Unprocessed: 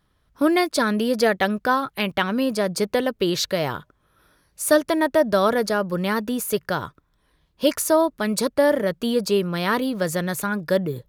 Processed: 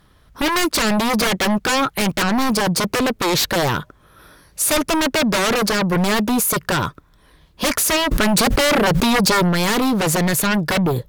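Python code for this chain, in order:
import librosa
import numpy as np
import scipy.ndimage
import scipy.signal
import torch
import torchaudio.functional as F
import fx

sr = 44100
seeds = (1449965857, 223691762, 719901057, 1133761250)

p1 = fx.fold_sine(x, sr, drive_db=19, ceiling_db=-5.0)
p2 = x + (p1 * 10.0 ** (-5.0 / 20.0))
p3 = fx.env_flatten(p2, sr, amount_pct=100, at=(8.1, 9.48), fade=0.02)
y = p3 * 10.0 ** (-6.0 / 20.0)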